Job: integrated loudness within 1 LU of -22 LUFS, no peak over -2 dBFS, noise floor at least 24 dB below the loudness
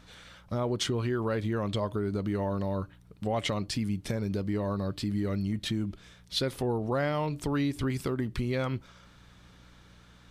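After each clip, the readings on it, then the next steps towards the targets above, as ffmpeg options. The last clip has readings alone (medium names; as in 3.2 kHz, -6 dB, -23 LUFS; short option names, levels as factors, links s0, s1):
hum 60 Hz; highest harmonic 180 Hz; hum level -57 dBFS; loudness -31.5 LUFS; peak level -17.0 dBFS; loudness target -22.0 LUFS
-> -af "bandreject=f=60:t=h:w=4,bandreject=f=120:t=h:w=4,bandreject=f=180:t=h:w=4"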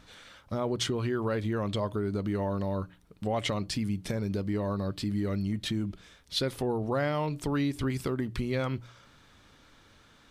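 hum not found; loudness -31.5 LUFS; peak level -17.0 dBFS; loudness target -22.0 LUFS
-> -af "volume=2.99"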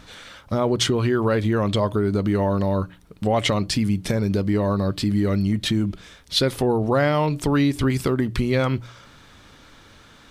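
loudness -22.0 LUFS; peak level -7.5 dBFS; noise floor -50 dBFS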